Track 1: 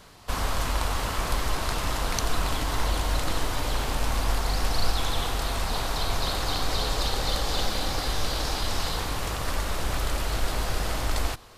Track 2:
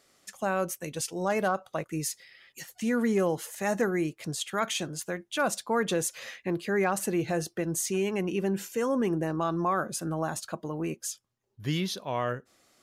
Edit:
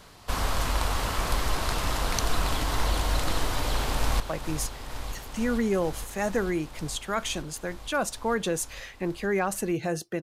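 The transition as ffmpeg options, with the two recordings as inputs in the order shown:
-filter_complex "[0:a]apad=whole_dur=10.22,atrim=end=10.22,atrim=end=4.202[s0];[1:a]atrim=start=1.648:end=7.67[s1];[s0][s1]acrossfade=d=0.004:c1=hsin:c2=hsin,asplit=2[s2][s3];[s3]afade=t=in:st=3.51:d=0.01,afade=t=out:st=4.2:d=0.01,aecho=0:1:460|920|1380|1840|2300|2760|3220|3680|4140|4600|5060|5520:0.298538|0.253758|0.215694|0.18334|0.155839|0.132463|0.112594|0.0957045|0.0813488|0.0691465|0.0587745|0.0499584[s4];[s2][s4]amix=inputs=2:normalize=0"

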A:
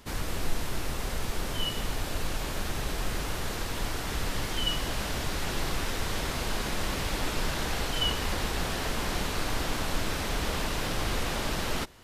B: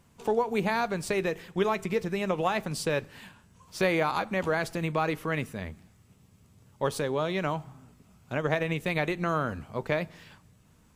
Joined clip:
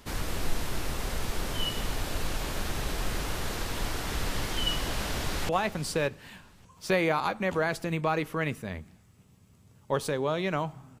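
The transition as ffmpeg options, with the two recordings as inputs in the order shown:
-filter_complex "[0:a]apad=whole_dur=11,atrim=end=11,atrim=end=5.492[s0];[1:a]atrim=start=2.398:end=7.91[s1];[s0][s1]acrossfade=d=0.004:c1=hsin:c2=hsin,asplit=2[s2][s3];[s3]afade=t=in:st=4.94:d=0.01,afade=t=out:st=5.49:d=0.01,aecho=0:1:580|1160:0.199526|0.0399052[s4];[s2][s4]amix=inputs=2:normalize=0"

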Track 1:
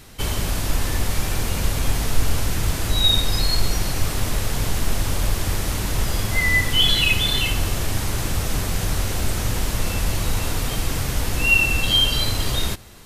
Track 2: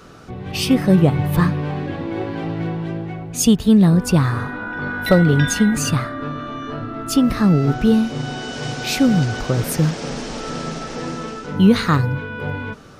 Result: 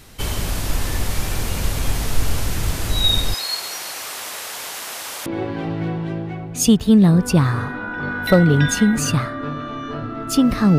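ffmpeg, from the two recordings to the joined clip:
-filter_complex "[0:a]asettb=1/sr,asplit=3[s0][s1][s2];[s0]atrim=end=3.344[s3];[s1]atrim=start=3.34:end=5.26,asetpts=PTS-STARTPTS,afade=t=in:d=0.004:c=qsin,afade=t=out:st=1.916:d=0.004:c=qsin,highpass=710[s4];[s2]atrim=start=5.256[s5];[s3][s4]acrossfade=d=0.004:c1=hsin:c2=qsin[s6];[s6][s5]acrossfade=d=0.004:c1=qsin:c2=hsin,apad=whole_dur=10.78,atrim=end=10.78,atrim=end=5.262[s7];[1:a]atrim=start=2.048:end=7.57[s8];[s7][s8]acrossfade=d=0.004:c1=hsin:c2=hsin"

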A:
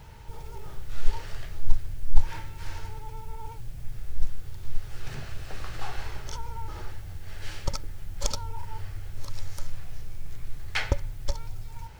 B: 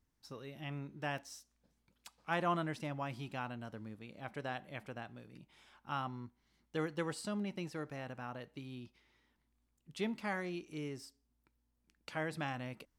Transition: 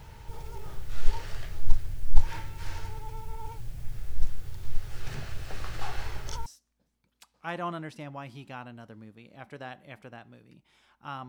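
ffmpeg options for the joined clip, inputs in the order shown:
-filter_complex "[0:a]apad=whole_dur=11.28,atrim=end=11.28,atrim=end=6.462[s0];[1:a]atrim=start=1.298:end=6.12[s1];[s0][s1]acrossfade=d=0.004:c1=hsin:c2=hsin"

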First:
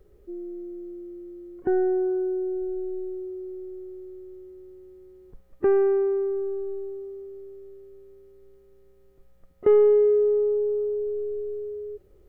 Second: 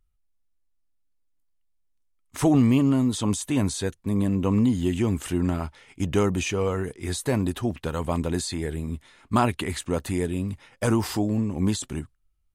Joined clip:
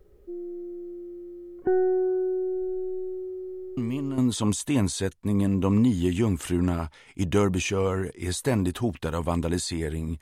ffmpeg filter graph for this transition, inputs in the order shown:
-filter_complex "[1:a]asplit=2[s0][s1];[0:a]apad=whole_dur=10.21,atrim=end=10.21,atrim=end=4.182[s2];[s1]atrim=start=2.988:end=9.02[s3];[s0]atrim=start=2.58:end=2.99,asetpts=PTS-STARTPTS,volume=0.316,afade=t=in:d=0.004:c=hsin,afade=t=out:st=0.406:d=0.004:c=hsin,adelay=166257S[s4];[s2][s3]acrossfade=d=0.004:c1=hsin:c2=hsin[s5];[s5][s4]amix=inputs=2:normalize=0"

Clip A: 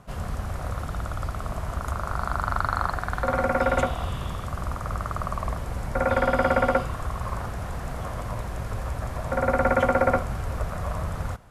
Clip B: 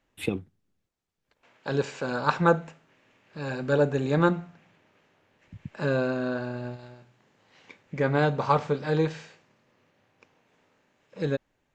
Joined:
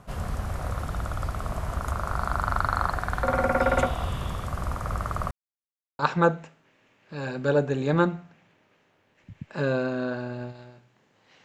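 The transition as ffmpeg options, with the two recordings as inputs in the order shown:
-filter_complex "[0:a]apad=whole_dur=11.44,atrim=end=11.44,asplit=2[s0][s1];[s0]atrim=end=5.31,asetpts=PTS-STARTPTS,afade=t=out:st=5.306:d=0.004:c=hsin[s2];[s1]atrim=start=5.31:end=5.99,asetpts=PTS-STARTPTS,volume=0[s3];[1:a]atrim=start=2.23:end=7.68,asetpts=PTS-STARTPTS,afade=t=in:d=0.004:c=hsin[s4];[s2][s3][s4]concat=n=3:v=0:a=1"

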